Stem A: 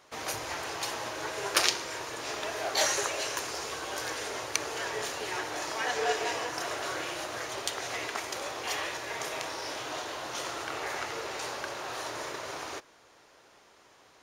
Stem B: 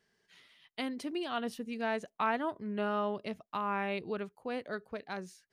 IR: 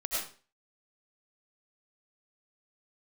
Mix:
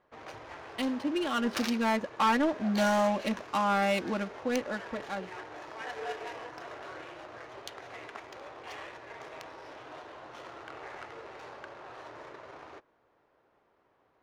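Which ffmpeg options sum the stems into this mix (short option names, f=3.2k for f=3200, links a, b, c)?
-filter_complex "[0:a]volume=-7.5dB[a];[1:a]aecho=1:1:3.6:0.9,dynaudnorm=f=300:g=9:m=7dB,volume=0dB[b];[a][b]amix=inputs=2:normalize=0,adynamicsmooth=sensitivity=7.5:basefreq=1.6k,asoftclip=type=tanh:threshold=-19dB"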